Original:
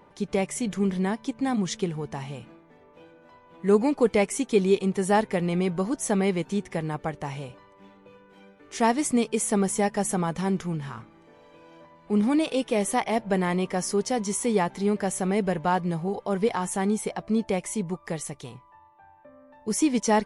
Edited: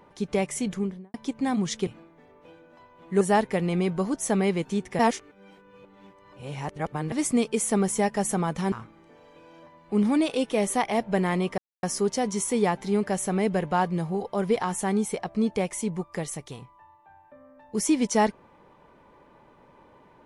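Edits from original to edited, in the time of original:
0.63–1.14 s: studio fade out
1.87–2.39 s: delete
3.73–5.01 s: delete
6.79–8.92 s: reverse
10.52–10.90 s: delete
13.76 s: insert silence 0.25 s

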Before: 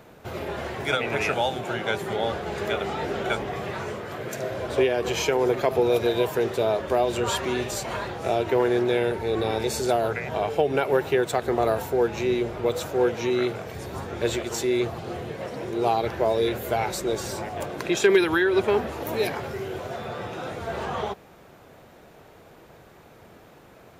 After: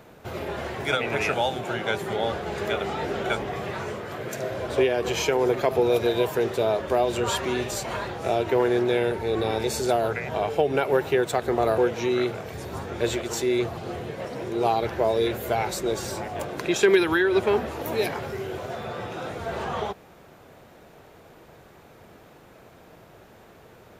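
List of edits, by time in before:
11.78–12.99 s: delete

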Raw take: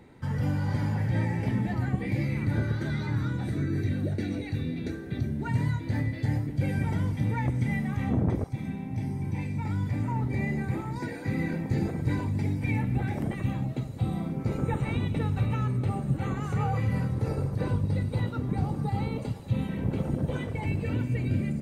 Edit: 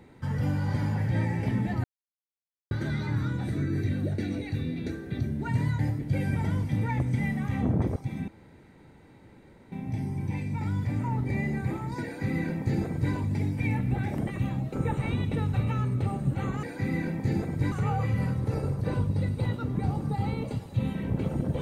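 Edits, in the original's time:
1.84–2.71 s: mute
5.79–6.27 s: delete
8.76 s: insert room tone 1.44 s
11.09–12.18 s: copy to 16.46 s
13.77–14.56 s: delete

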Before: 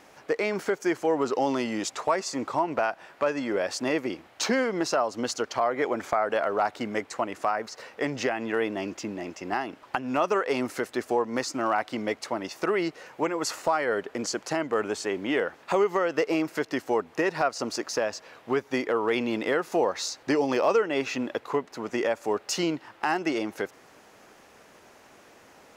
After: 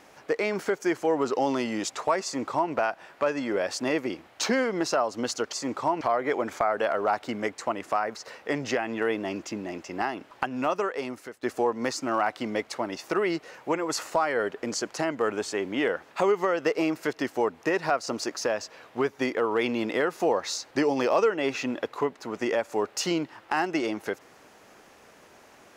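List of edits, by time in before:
2.24–2.72 s: copy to 5.53 s
10.02–10.95 s: fade out, to -16.5 dB

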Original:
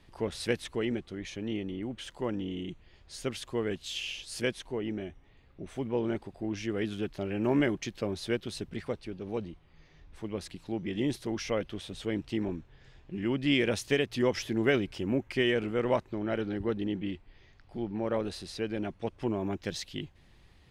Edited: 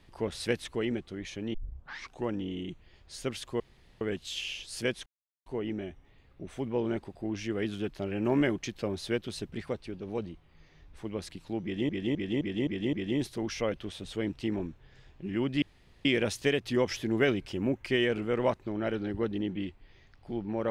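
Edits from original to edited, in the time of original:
1.54 s: tape start 0.73 s
3.60 s: insert room tone 0.41 s
4.65 s: insert silence 0.40 s
10.82–11.08 s: loop, 6 plays
13.51 s: insert room tone 0.43 s

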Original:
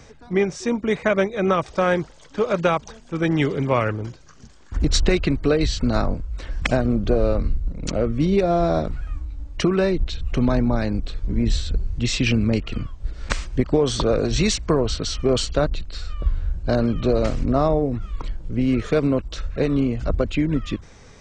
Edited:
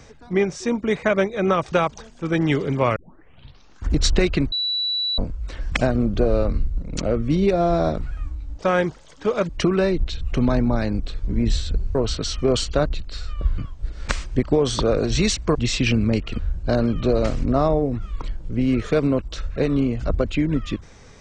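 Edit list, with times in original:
1.72–2.62 s: move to 9.49 s
3.86 s: tape start 0.88 s
5.42–6.08 s: bleep 3.94 kHz -20.5 dBFS
11.95–12.79 s: swap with 14.76–16.39 s

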